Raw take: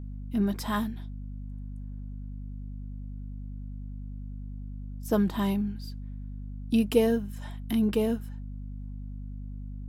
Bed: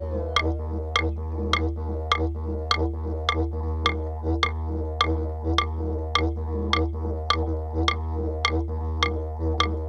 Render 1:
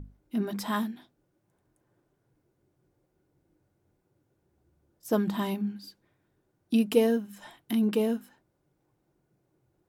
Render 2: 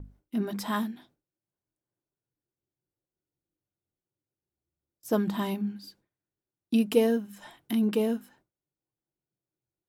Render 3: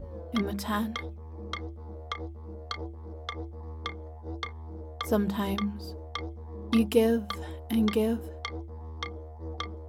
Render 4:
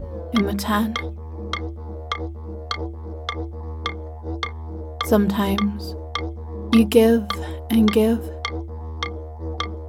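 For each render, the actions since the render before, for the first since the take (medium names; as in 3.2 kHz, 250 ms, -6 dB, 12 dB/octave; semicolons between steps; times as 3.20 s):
hum notches 50/100/150/200/250 Hz
gate with hold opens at -50 dBFS
add bed -13 dB
trim +9 dB; peak limiter -3 dBFS, peak gain reduction 1 dB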